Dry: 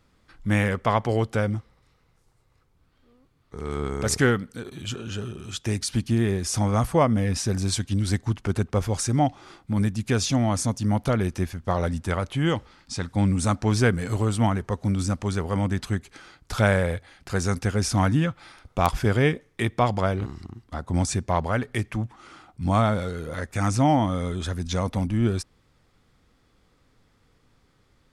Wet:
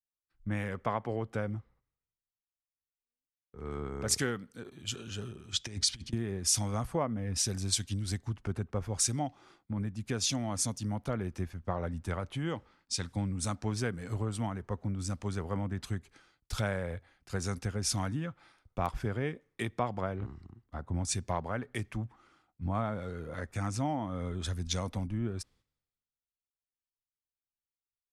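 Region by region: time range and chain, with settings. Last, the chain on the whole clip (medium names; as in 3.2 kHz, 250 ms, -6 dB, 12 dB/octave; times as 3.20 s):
5.52–6.13 s: distance through air 78 m + band-stop 2.7 kHz, Q 14 + compressor with a negative ratio -29 dBFS, ratio -0.5
whole clip: gate -54 dBFS, range -7 dB; compression 6:1, threshold -27 dBFS; three bands expanded up and down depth 100%; trim -4 dB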